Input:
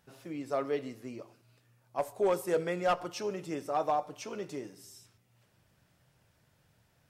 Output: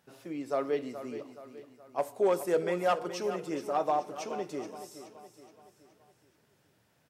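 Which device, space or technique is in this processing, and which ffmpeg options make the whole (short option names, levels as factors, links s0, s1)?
filter by subtraction: -filter_complex "[0:a]aecho=1:1:423|846|1269|1692|2115:0.251|0.118|0.0555|0.0261|0.0123,asplit=2[s0][s1];[s1]lowpass=290,volume=-1[s2];[s0][s2]amix=inputs=2:normalize=0"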